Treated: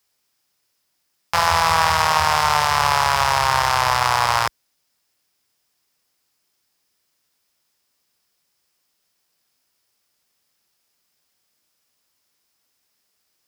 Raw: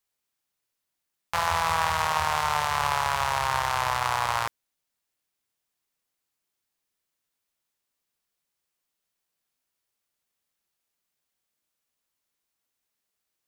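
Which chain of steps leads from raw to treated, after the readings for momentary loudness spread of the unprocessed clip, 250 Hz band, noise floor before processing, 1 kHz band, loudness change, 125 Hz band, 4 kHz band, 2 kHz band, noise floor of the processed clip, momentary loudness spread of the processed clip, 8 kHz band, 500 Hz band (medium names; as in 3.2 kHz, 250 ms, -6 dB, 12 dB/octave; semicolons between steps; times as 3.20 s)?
4 LU, +8.0 dB, -83 dBFS, +8.0 dB, +8.0 dB, +7.5 dB, +10.0 dB, +8.0 dB, -71 dBFS, 4 LU, +9.0 dB, +8.0 dB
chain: in parallel at +1.5 dB: peak limiter -18.5 dBFS, peak gain reduction 9.5 dB; on the sum: high-pass 46 Hz; peaking EQ 5.1 kHz +8 dB 0.25 oct; trim +4 dB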